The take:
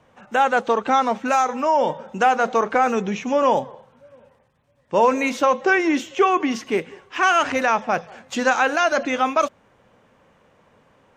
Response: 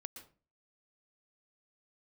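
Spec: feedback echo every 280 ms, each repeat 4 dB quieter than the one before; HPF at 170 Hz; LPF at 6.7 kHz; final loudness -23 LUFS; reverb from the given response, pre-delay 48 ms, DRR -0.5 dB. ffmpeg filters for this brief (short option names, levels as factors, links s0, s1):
-filter_complex "[0:a]highpass=170,lowpass=6700,aecho=1:1:280|560|840|1120|1400|1680|1960|2240|2520:0.631|0.398|0.25|0.158|0.0994|0.0626|0.0394|0.0249|0.0157,asplit=2[s0][s1];[1:a]atrim=start_sample=2205,adelay=48[s2];[s1][s2]afir=irnorm=-1:irlink=0,volume=1.78[s3];[s0][s3]amix=inputs=2:normalize=0,volume=0.422"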